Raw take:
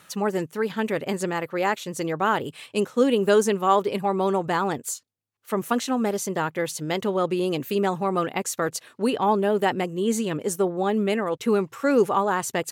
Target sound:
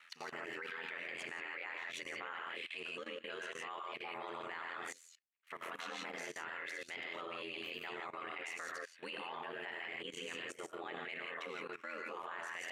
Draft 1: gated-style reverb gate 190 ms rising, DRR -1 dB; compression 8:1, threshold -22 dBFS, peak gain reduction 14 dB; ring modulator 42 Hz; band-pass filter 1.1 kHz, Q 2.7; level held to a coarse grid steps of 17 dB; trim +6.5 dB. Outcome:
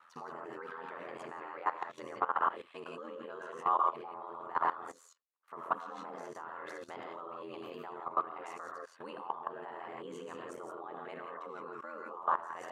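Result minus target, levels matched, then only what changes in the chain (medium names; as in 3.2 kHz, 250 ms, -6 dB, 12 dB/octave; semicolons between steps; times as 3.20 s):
2 kHz band -9.5 dB
change: band-pass filter 2.2 kHz, Q 2.7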